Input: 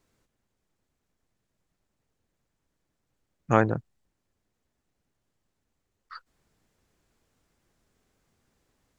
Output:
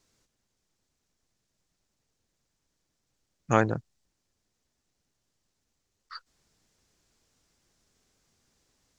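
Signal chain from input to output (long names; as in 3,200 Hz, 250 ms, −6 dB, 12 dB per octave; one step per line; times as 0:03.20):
parametric band 5,600 Hz +10.5 dB 1.5 octaves
level −2 dB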